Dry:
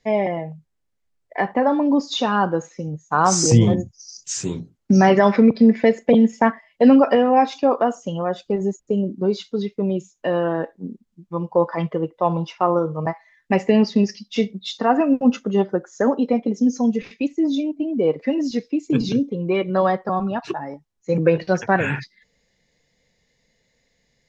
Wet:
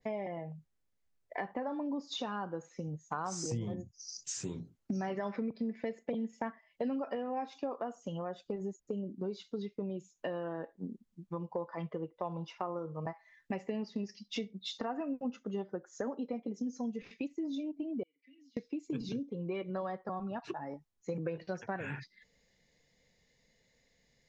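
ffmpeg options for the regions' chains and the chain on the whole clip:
-filter_complex "[0:a]asettb=1/sr,asplit=3[s0][s1][s2];[s0]atrim=end=18.034[s3];[s1]atrim=start=18.03:end=18.57,asetpts=PTS-STARTPTS,afade=t=in:d=0.004:c=qsin,afade=t=out:st=0.536:d=0.004:c=qsin,aderivative,acompressor=threshold=0.00708:ratio=4:attack=3.2:release=140:knee=1:detection=peak,asplit=3[s4][s5][s6];[s4]bandpass=f=270:t=q:w=8,volume=1[s7];[s5]bandpass=f=2290:t=q:w=8,volume=0.501[s8];[s6]bandpass=f=3010:t=q:w=8,volume=0.355[s9];[s7][s8][s9]amix=inputs=3:normalize=0[s10];[s2]atrim=start=18.566[s11];[s3][s10]acrossfade=d=0.004:c1=hsin:c2=qsin[s12];[s12][s11]acrossfade=d=0.004:c1=qsin:c2=hsin,acompressor=threshold=0.0251:ratio=4,adynamicequalizer=threshold=0.00447:dfrequency=2300:dqfactor=0.7:tfrequency=2300:tqfactor=0.7:attack=5:release=100:ratio=0.375:range=2:mode=cutabove:tftype=highshelf,volume=0.562"

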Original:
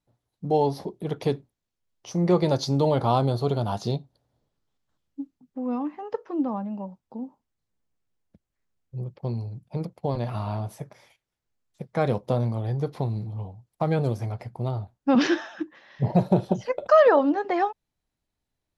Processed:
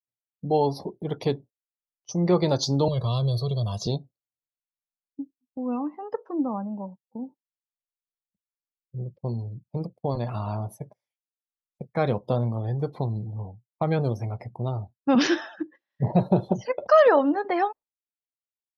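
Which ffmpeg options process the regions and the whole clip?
-filter_complex "[0:a]asettb=1/sr,asplit=3[s0][s1][s2];[s0]atrim=end=2.884[s3];[s1]atrim=start=2.88:end=3.87,asetpts=PTS-STARTPTS,afade=t=in:d=0.004:c=qsin,afade=t=out:st=0.986:d=0.004:c=qsin,aecho=1:1:1.8:0.82,atrim=end_sample=43659,acrossover=split=240|3000[s4][s5][s6];[s5]acompressor=threshold=0.00708:ratio=2:attack=3.2:release=140:knee=2.83:detection=peak[s7];[s4][s7][s6]amix=inputs=3:normalize=0[s8];[s2]atrim=start=3.866[s9];[s3][s8]acrossfade=d=0.004:c1=hsin:c2=qsin[s10];[s10][s9]acrossfade=d=0.004:c1=qsin:c2=hsin,agate=range=0.2:threshold=0.00794:ratio=16:detection=peak,afftdn=nr=22:nf=-47,aemphasis=mode=production:type=cd"

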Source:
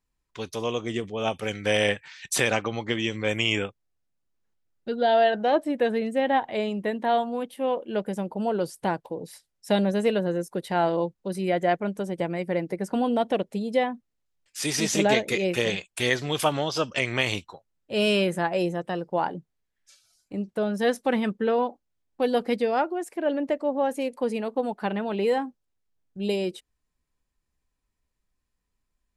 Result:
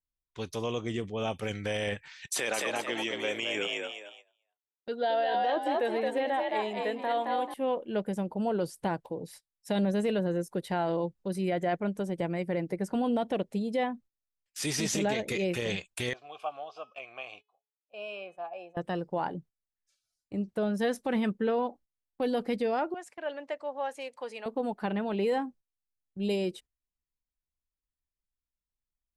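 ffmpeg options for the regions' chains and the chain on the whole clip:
-filter_complex "[0:a]asettb=1/sr,asplit=3[s0][s1][s2];[s0]atrim=end=2.264[s3];[s1]atrim=start=2.26:end=7.54,asetpts=PTS-STARTPTS,afade=t=in:d=0.004:c=qsin,afade=t=out:st=5.276:d=0.004:c=qsin,highpass=350,asplit=5[s4][s5][s6][s7][s8];[s5]adelay=219,afreqshift=58,volume=0.668[s9];[s6]adelay=438,afreqshift=116,volume=0.207[s10];[s7]adelay=657,afreqshift=174,volume=0.0646[s11];[s8]adelay=876,afreqshift=232,volume=0.02[s12];[s4][s9][s10][s11][s12]amix=inputs=5:normalize=0,atrim=end_sample=232848[s13];[s2]atrim=start=7.536[s14];[s3][s13]acrossfade=d=0.004:c1=hsin:c2=qsin[s15];[s15][s14]acrossfade=d=0.004:c1=qsin:c2=hsin,asettb=1/sr,asplit=3[s16][s17][s18];[s16]atrim=end=16.134[s19];[s17]atrim=start=16.13:end=18.77,asetpts=PTS-STARTPTS,afade=t=in:d=0.004:c=qsin,afade=t=out:st=2.636:d=0.004:c=qsin,asplit=3[s20][s21][s22];[s20]bandpass=f=730:t=q:w=8,volume=1[s23];[s21]bandpass=f=1090:t=q:w=8,volume=0.501[s24];[s22]bandpass=f=2440:t=q:w=8,volume=0.355[s25];[s23][s24][s25]amix=inputs=3:normalize=0,equalizer=f=150:w=0.45:g=-6,bandreject=f=424.4:t=h:w=4,bandreject=f=848.8:t=h:w=4,bandreject=f=1273.2:t=h:w=4,bandreject=f=1697.6:t=h:w=4,bandreject=f=2122:t=h:w=4,bandreject=f=2546.4:t=h:w=4,bandreject=f=2970.8:t=h:w=4,bandreject=f=3395.2:t=h:w=4,bandreject=f=3819.6:t=h:w=4,bandreject=f=4244:t=h:w=4,bandreject=f=4668.4:t=h:w=4,bandreject=f=5092.8:t=h:w=4,bandreject=f=5517.2:t=h:w=4,bandreject=f=5941.6:t=h:w=4,bandreject=f=6366:t=h:w=4,bandreject=f=6790.4:t=h:w=4,bandreject=f=7214.8:t=h:w=4,bandreject=f=7639.2:t=h:w=4,bandreject=f=8063.6:t=h:w=4,bandreject=f=8488:t=h:w=4,bandreject=f=8912.4:t=h:w=4,bandreject=f=9336.8:t=h:w=4,bandreject=f=9761.2:t=h:w=4,bandreject=f=10185.6:t=h:w=4,bandreject=f=10610:t=h:w=4,bandreject=f=11034.4:t=h:w=4,bandreject=f=11458.8:t=h:w=4,bandreject=f=11883.2:t=h:w=4,bandreject=f=12307.6:t=h:w=4,bandreject=f=12732:t=h:w=4[s26];[s18]atrim=start=18.766[s27];[s19][s26]acrossfade=d=0.004:c1=hsin:c2=qsin[s28];[s28][s27]acrossfade=d=0.004:c1=qsin:c2=hsin,asettb=1/sr,asplit=3[s29][s30][s31];[s29]atrim=end=22.944[s32];[s30]atrim=start=22.94:end=24.46,asetpts=PTS-STARTPTS,afade=t=in:d=0.004:c=qsin,afade=t=out:st=1.516:d=0.004:c=qsin,aeval=exprs='val(0)+0.00224*(sin(2*PI*50*n/s)+sin(2*PI*2*50*n/s)/2+sin(2*PI*3*50*n/s)/3+sin(2*PI*4*50*n/s)/4+sin(2*PI*5*50*n/s)/5)':c=same,highpass=760,lowpass=7500[s33];[s31]atrim=start=24.456[s34];[s32][s33]acrossfade=d=0.004:c1=hsin:c2=qsin[s35];[s35][s34]acrossfade=d=0.004:c1=qsin:c2=hsin,agate=range=0.158:threshold=0.00447:ratio=16:detection=peak,lowshelf=f=140:g=7,alimiter=limit=0.141:level=0:latency=1:release=15,volume=0.631"

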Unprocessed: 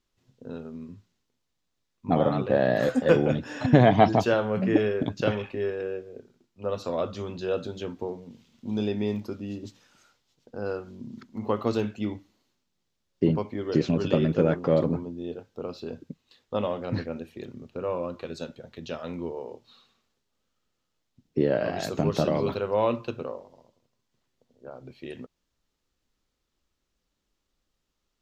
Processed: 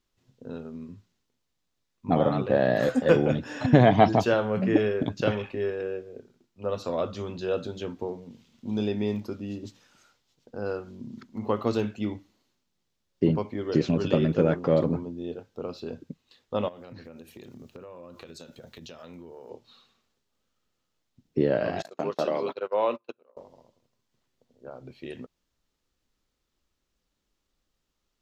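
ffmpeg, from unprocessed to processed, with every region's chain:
-filter_complex "[0:a]asettb=1/sr,asplit=3[s0][s1][s2];[s0]atrim=end=16.684[s3];[s1]atrim=start=16.68:end=19.5,asetpts=PTS-STARTPTS,afade=t=in:d=0.004:c=qsin,afade=t=out:st=2.816:d=0.004:c=qsin,aemphasis=mode=production:type=50kf,acompressor=threshold=0.01:ratio=12:attack=3.2:release=140:knee=1:detection=peak[s4];[s2]atrim=start=19.496[s5];[s3][s4]acrossfade=d=0.004:c1=hsin:c2=qsin[s6];[s6][s5]acrossfade=d=0.004:c1=qsin:c2=hsin,asettb=1/sr,asplit=3[s7][s8][s9];[s7]atrim=end=21.824[s10];[s8]atrim=start=21.82:end=23.37,asetpts=PTS-STARTPTS,afade=t=in:d=0.004:c=qsin,afade=t=out:st=1.546:d=0.004:c=qsin,agate=range=0.0355:threshold=0.0316:ratio=16:release=100:detection=peak,highpass=380,highshelf=f=4900:g=-5.5[s11];[s9]atrim=start=23.366[s12];[s10][s11]acrossfade=d=0.004:c1=hsin:c2=qsin[s13];[s13][s12]acrossfade=d=0.004:c1=qsin:c2=hsin"

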